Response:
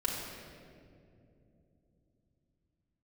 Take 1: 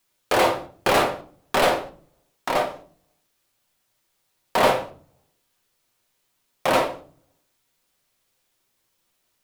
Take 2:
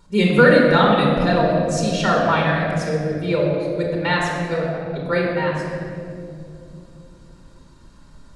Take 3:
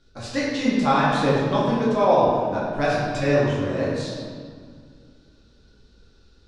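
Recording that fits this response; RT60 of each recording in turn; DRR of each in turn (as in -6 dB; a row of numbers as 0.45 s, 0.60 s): 2; 0.45 s, 2.8 s, 2.0 s; 2.5 dB, -3.5 dB, -8.0 dB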